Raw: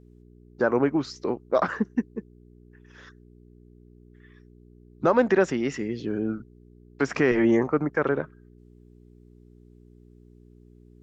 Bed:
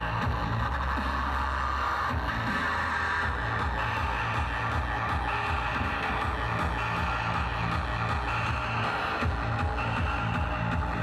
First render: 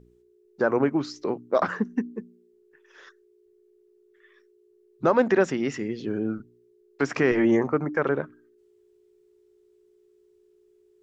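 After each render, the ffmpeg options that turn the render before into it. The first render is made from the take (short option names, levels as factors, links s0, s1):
-af "bandreject=f=60:t=h:w=4,bandreject=f=120:t=h:w=4,bandreject=f=180:t=h:w=4,bandreject=f=240:t=h:w=4,bandreject=f=300:t=h:w=4"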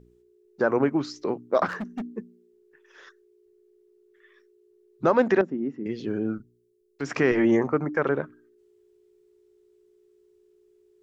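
-filter_complex "[0:a]asettb=1/sr,asplit=3[s0][s1][s2];[s0]atrim=end=1.664[s3];[s1]atrim=start=1.66:end=2.07,asetpts=PTS-STARTPTS,afade=t=in:d=0.004:c=qsin,afade=t=out:st=0.406:d=0.004:c=qsin,asoftclip=type=hard:threshold=0.0398[s4];[s2]atrim=start=2.066[s5];[s3][s4]acrossfade=d=0.004:c1=hsin:c2=qsin[s6];[s6][s5]acrossfade=d=0.004:c1=qsin:c2=hsin,asettb=1/sr,asplit=3[s7][s8][s9];[s7]atrim=end=5.414[s10];[s8]atrim=start=5.41:end=5.86,asetpts=PTS-STARTPTS,afade=t=in:d=0.004:c=qsin,afade=t=out:st=0.446:d=0.004:c=qsin,bandpass=f=260:t=q:w=1.9[s11];[s9]atrim=start=5.856[s12];[s10][s11]acrossfade=d=0.004:c1=hsin:c2=qsin[s13];[s13][s12]acrossfade=d=0.004:c1=qsin:c2=hsin,asplit=3[s14][s15][s16];[s14]afade=t=out:st=6.37:d=0.02[s17];[s15]equalizer=f=920:w=0.32:g=-11,afade=t=in:st=6.37:d=0.02,afade=t=out:st=7.05:d=0.02[s18];[s16]afade=t=in:st=7.05:d=0.02[s19];[s17][s18][s19]amix=inputs=3:normalize=0"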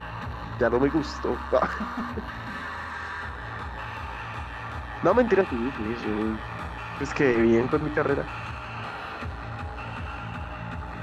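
-filter_complex "[1:a]volume=0.501[s0];[0:a][s0]amix=inputs=2:normalize=0"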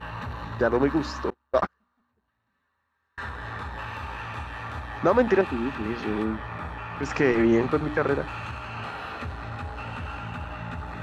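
-filter_complex "[0:a]asettb=1/sr,asplit=3[s0][s1][s2];[s0]atrim=end=1.304[s3];[s1]atrim=start=1.3:end=3.18,asetpts=PTS-STARTPTS,afade=t=in:d=0.004:c=qsin,afade=t=out:st=1.876:d=0.004:c=qsin,agate=range=0.00891:threshold=0.0708:ratio=16:release=100:detection=peak[s4];[s2]atrim=start=3.176[s5];[s3][s4]acrossfade=d=0.004:c1=hsin:c2=qsin[s6];[s6][s5]acrossfade=d=0.004:c1=qsin:c2=hsin,asettb=1/sr,asplit=3[s7][s8][s9];[s7]atrim=end=6.244[s10];[s8]atrim=start=6.24:end=7.03,asetpts=PTS-STARTPTS,afade=t=in:d=0.004:c=qsin,afade=t=out:st=0.786:d=0.004:c=qsin,acrossover=split=2900[s11][s12];[s12]acompressor=threshold=0.00126:ratio=4:attack=1:release=60[s13];[s11][s13]amix=inputs=2:normalize=0[s14];[s9]atrim=start=7.026[s15];[s10][s14]acrossfade=d=0.004:c1=hsin:c2=qsin[s16];[s16][s15]acrossfade=d=0.004:c1=qsin:c2=hsin"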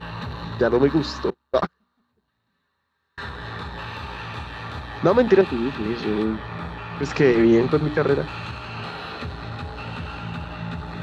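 -af "equalizer=f=160:t=o:w=0.67:g=9,equalizer=f=400:t=o:w=0.67:g=6,equalizer=f=4000:t=o:w=0.67:g=11"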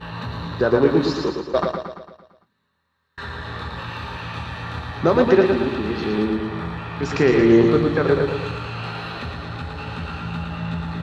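-filter_complex "[0:a]asplit=2[s0][s1];[s1]adelay=24,volume=0.251[s2];[s0][s2]amix=inputs=2:normalize=0,aecho=1:1:113|226|339|452|565|678|791:0.562|0.304|0.164|0.0885|0.0478|0.0258|0.0139"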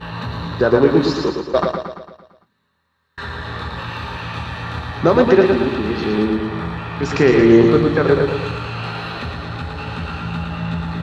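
-af "volume=1.5,alimiter=limit=0.891:level=0:latency=1"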